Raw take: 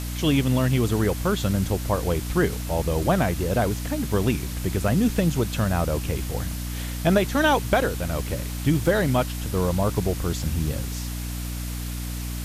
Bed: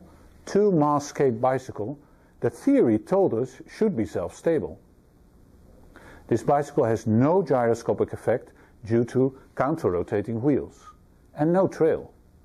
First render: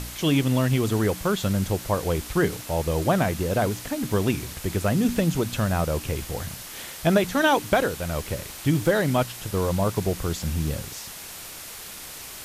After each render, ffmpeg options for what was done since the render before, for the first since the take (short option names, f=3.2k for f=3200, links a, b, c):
-af "bandreject=f=60:t=h:w=4,bandreject=f=120:t=h:w=4,bandreject=f=180:t=h:w=4,bandreject=f=240:t=h:w=4,bandreject=f=300:t=h:w=4"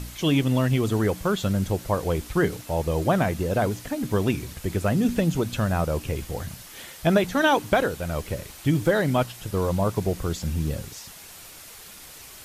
-af "afftdn=nr=6:nf=-39"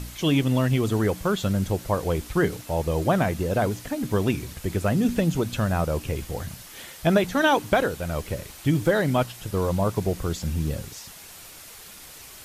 -af anull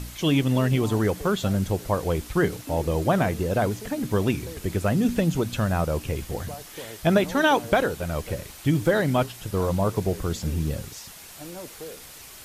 -filter_complex "[1:a]volume=-18.5dB[a];[0:a][a]amix=inputs=2:normalize=0"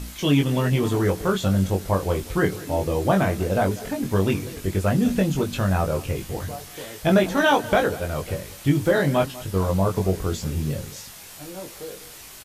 -filter_complex "[0:a]asplit=2[a][b];[b]adelay=21,volume=-3.5dB[c];[a][c]amix=inputs=2:normalize=0,aecho=1:1:196:0.119"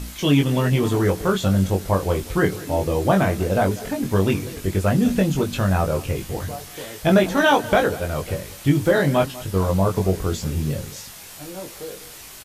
-af "volume=2dB"